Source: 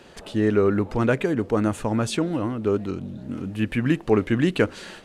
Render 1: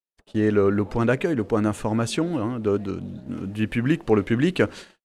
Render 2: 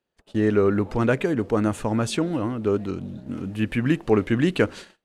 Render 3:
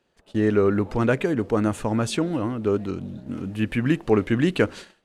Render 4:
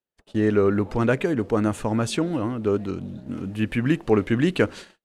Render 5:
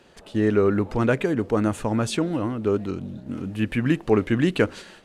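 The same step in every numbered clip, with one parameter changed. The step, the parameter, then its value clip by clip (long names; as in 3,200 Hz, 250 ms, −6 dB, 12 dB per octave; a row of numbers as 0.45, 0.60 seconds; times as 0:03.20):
noise gate, range: −59, −34, −22, −46, −6 decibels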